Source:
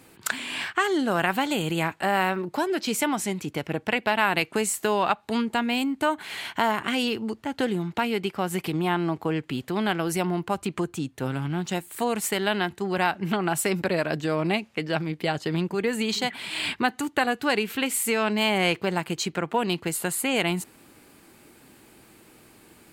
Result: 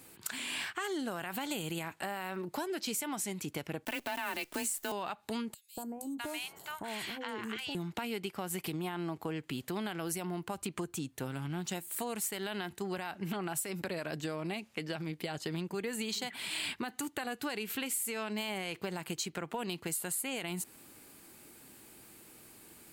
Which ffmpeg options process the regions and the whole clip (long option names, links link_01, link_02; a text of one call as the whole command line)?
ffmpeg -i in.wav -filter_complex "[0:a]asettb=1/sr,asplit=3[link_01][link_02][link_03];[link_01]atrim=end=3.854[link_04];[link_02]atrim=start=3.85:end=4.92,asetpts=PTS-STARTPTS,afade=type=in:duration=0.004:curve=qsin,afade=type=out:start_time=1.066:duration=0.004:curve=qsin,aecho=1:1:3.4:0.59,atrim=end_sample=47187,afreqshift=25,acrusher=bits=7:dc=4:mix=0:aa=0.000001[link_05];[link_03]atrim=start=4.916[link_06];[link_04][link_05]acrossfade=duration=0.004:curve1=hsin:curve2=qsin[link_07];[link_07][link_06]acrossfade=duration=0.004:curve1=qsin:curve2=hsin,asettb=1/sr,asplit=3[link_08][link_09][link_10];[link_08]atrim=end=5.544[link_11];[link_09]atrim=start=5.54:end=7.75,asetpts=PTS-STARTPTS,afade=type=in:duration=0.004:curve=qsin,afade=type=out:start_time=2.206:duration=0.004:curve=qsin,bandreject=frequency=250:width=7.4,acompressor=threshold=-32dB:ratio=2:attack=3.2:release=140:knee=1:detection=peak,acrossover=split=880|5400[link_12][link_13][link_14];[link_12]adelay=230[link_15];[link_13]adelay=650[link_16];[link_15][link_16][link_14]amix=inputs=3:normalize=0,atrim=end_sample=97461[link_17];[link_10]atrim=start=7.746[link_18];[link_11][link_17]acrossfade=duration=0.004:curve1=hsin:curve2=qsin[link_19];[link_19][link_18]acrossfade=duration=0.004:curve1=qsin:curve2=hsin,alimiter=limit=-16dB:level=0:latency=1:release=36,highshelf=frequency=5600:gain=10.5,acompressor=threshold=-28dB:ratio=4,volume=-6dB" out.wav